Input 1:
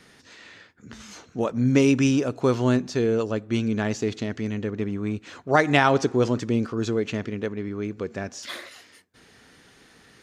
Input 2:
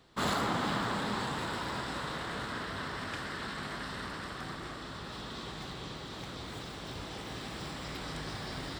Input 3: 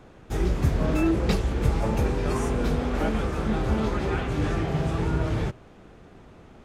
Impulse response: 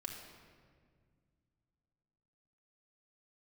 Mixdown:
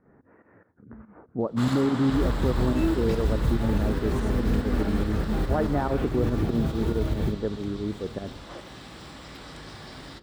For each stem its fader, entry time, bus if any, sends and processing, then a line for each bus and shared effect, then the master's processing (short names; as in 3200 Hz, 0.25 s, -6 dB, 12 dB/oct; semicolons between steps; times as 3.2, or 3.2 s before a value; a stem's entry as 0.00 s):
+1.5 dB, 0.00 s, bus A, send -23.5 dB, Gaussian blur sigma 7.4 samples
-4.5 dB, 1.40 s, no bus, send -7.5 dB, dry
-8.0 dB, 1.80 s, bus A, send -9 dB, low shelf 440 Hz +8.5 dB; modulation noise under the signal 30 dB
bus A: 0.0 dB, pump 143 bpm, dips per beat 2, -14 dB, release 0.16 s; limiter -17 dBFS, peak gain reduction 11 dB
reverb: on, RT60 1.9 s, pre-delay 3 ms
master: dry